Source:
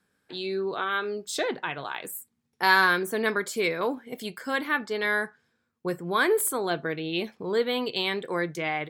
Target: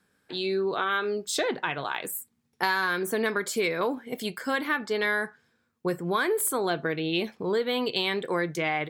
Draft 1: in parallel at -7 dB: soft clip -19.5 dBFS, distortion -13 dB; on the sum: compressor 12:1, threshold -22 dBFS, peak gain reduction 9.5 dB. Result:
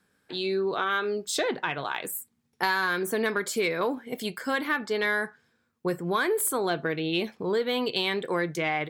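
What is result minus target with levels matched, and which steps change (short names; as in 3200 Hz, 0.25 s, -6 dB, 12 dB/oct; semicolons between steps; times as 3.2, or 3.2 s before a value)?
soft clip: distortion +7 dB
change: soft clip -13.5 dBFS, distortion -19 dB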